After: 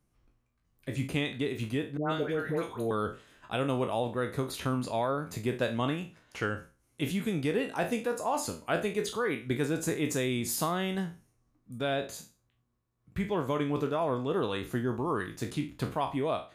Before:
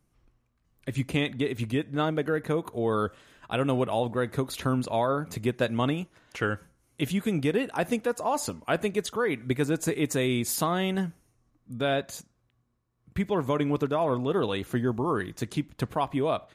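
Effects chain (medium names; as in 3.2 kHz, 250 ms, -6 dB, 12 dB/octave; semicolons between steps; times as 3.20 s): spectral sustain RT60 0.33 s; 1.97–2.91 s: phase dispersion highs, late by 129 ms, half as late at 1.1 kHz; trim -4.5 dB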